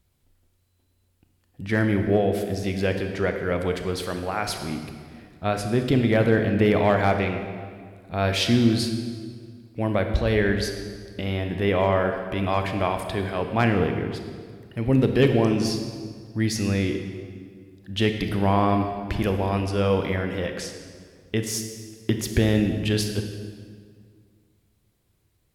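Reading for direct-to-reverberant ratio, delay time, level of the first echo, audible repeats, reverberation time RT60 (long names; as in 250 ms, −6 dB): 5.5 dB, no echo audible, no echo audible, no echo audible, 2.0 s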